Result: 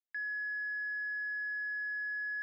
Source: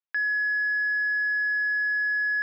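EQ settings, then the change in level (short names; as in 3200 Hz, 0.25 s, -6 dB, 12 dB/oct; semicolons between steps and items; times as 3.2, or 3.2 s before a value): HPF 1500 Hz 12 dB/oct; LPF 3800 Hz 12 dB/oct; fixed phaser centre 1900 Hz, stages 8; -8.5 dB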